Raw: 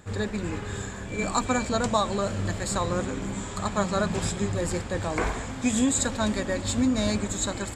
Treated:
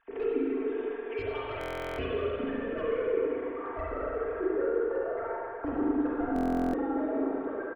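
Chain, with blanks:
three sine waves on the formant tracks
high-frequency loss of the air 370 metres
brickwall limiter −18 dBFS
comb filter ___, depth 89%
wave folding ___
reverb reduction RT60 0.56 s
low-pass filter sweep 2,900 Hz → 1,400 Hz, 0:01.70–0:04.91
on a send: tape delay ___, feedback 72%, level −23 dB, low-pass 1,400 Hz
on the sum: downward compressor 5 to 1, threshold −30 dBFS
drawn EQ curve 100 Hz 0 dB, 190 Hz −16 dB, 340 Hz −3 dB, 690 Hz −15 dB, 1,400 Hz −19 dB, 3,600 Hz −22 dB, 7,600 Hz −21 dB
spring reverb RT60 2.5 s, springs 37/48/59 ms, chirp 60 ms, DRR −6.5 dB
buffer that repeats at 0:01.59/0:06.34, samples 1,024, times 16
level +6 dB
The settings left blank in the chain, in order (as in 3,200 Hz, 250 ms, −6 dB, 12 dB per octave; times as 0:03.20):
4.4 ms, −22 dBFS, 787 ms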